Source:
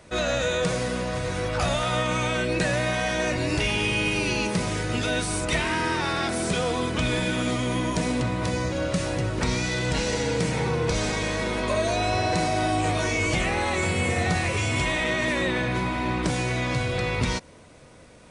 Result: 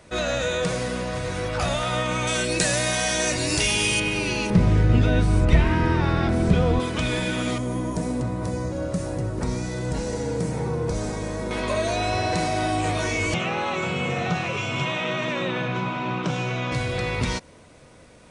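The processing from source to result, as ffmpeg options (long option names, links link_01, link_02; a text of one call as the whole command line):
ffmpeg -i in.wav -filter_complex "[0:a]asettb=1/sr,asplit=3[link_01][link_02][link_03];[link_01]atrim=end=2.274[link_04];[link_02]atrim=start=2.27:end=4,asetpts=PTS-STARTPTS,afade=type=in:duration=0.004:curve=qsin,afade=type=out:start_time=1.726:duration=0.004:curve=qsin,bass=frequency=250:gain=-1,treble=frequency=4000:gain=14[link_05];[link_03]atrim=start=3.996[link_06];[link_04][link_05]acrossfade=duration=0.004:curve1=hsin:curve2=qsin[link_07];[link_07][link_06]acrossfade=duration=0.004:curve1=qsin:curve2=hsin,asettb=1/sr,asplit=3[link_08][link_09][link_10];[link_08]atrim=end=4.504[link_11];[link_09]atrim=start=4.5:end=6.8,asetpts=PTS-STARTPTS,afade=type=in:duration=0.004:curve=qsin,afade=type=out:start_time=2.296:duration=0.004:curve=qsin,aemphasis=mode=reproduction:type=riaa[link_12];[link_10]atrim=start=6.796[link_13];[link_11][link_12]acrossfade=duration=0.004:curve1=hsin:curve2=qsin[link_14];[link_14][link_13]acrossfade=duration=0.004:curve1=qsin:curve2=hsin,asettb=1/sr,asplit=3[link_15][link_16][link_17];[link_15]atrim=end=7.584[link_18];[link_16]atrim=start=7.58:end=11.51,asetpts=PTS-STARTPTS,afade=type=in:duration=0.004:curve=qsin,afade=type=out:start_time=3.926:duration=0.004:curve=qsin,equalizer=frequency=2900:width=0.65:gain=-14[link_19];[link_17]atrim=start=11.506[link_20];[link_18][link_19]acrossfade=duration=0.004:curve1=hsin:curve2=qsin[link_21];[link_21][link_20]acrossfade=duration=0.004:curve1=qsin:curve2=hsin,asettb=1/sr,asplit=3[link_22][link_23][link_24];[link_22]atrim=end=13.344[link_25];[link_23]atrim=start=13.34:end=16.72,asetpts=PTS-STARTPTS,afade=type=in:duration=0.004:curve=qsin,afade=type=out:start_time=3.376:duration=0.004:curve=qsin,highpass=frequency=130:width=0.5412,highpass=frequency=130:width=1.3066,equalizer=frequency=140:width_type=q:width=4:gain=8,equalizer=frequency=290:width_type=q:width=4:gain=-6,equalizer=frequency=1300:width_type=q:width=4:gain=5,equalizer=frequency=1900:width_type=q:width=4:gain=-8,equalizer=frequency=2800:width_type=q:width=4:gain=4,equalizer=frequency=4600:width_type=q:width=4:gain=-9,lowpass=frequency=5900:width=0.5412,lowpass=frequency=5900:width=1.3066[link_26];[link_24]atrim=start=16.716[link_27];[link_25][link_26]acrossfade=duration=0.004:curve1=hsin:curve2=qsin[link_28];[link_28][link_27]acrossfade=duration=0.004:curve1=qsin:curve2=hsin" out.wav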